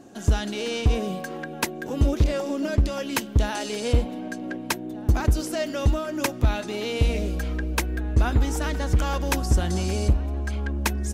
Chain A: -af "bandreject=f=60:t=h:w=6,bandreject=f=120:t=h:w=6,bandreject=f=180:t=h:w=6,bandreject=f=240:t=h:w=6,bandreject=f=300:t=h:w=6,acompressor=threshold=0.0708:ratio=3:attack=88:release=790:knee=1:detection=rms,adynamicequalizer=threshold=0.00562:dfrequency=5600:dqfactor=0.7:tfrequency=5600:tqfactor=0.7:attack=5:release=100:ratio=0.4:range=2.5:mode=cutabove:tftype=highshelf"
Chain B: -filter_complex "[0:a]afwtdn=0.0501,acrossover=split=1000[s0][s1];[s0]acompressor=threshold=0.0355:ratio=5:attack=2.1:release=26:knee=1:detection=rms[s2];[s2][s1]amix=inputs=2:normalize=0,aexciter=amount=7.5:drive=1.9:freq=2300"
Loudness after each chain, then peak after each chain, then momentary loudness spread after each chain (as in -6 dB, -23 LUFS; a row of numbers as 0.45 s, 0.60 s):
-29.0 LUFS, -31.5 LUFS; -11.5 dBFS, -10.0 dBFS; 4 LU, 4 LU